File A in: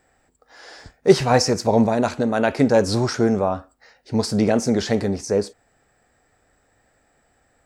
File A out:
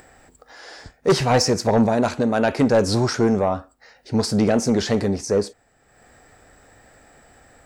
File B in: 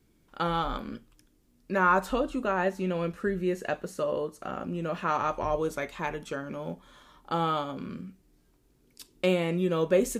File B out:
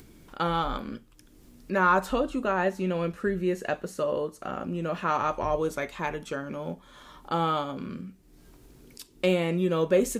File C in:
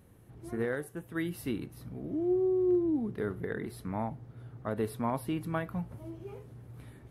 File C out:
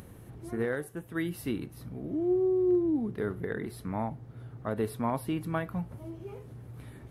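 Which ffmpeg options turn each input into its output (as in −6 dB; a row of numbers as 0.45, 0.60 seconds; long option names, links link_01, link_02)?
-af "aeval=exprs='0.891*(cos(1*acos(clip(val(0)/0.891,-1,1)))-cos(1*PI/2))+0.224*(cos(5*acos(clip(val(0)/0.891,-1,1)))-cos(5*PI/2))':channel_layout=same,acompressor=mode=upward:threshold=-35dB:ratio=2.5,volume=-5.5dB"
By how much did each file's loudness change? 0.0, +1.5, +1.5 LU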